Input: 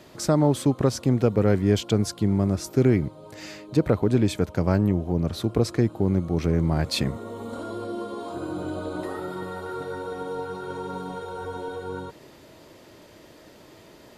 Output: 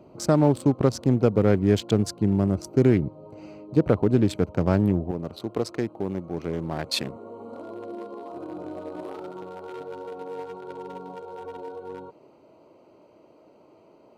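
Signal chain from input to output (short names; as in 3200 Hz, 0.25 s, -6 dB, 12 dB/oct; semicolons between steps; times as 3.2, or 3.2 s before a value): Wiener smoothing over 25 samples; HPF 87 Hz 6 dB/oct, from 5.11 s 550 Hz; gain +1.5 dB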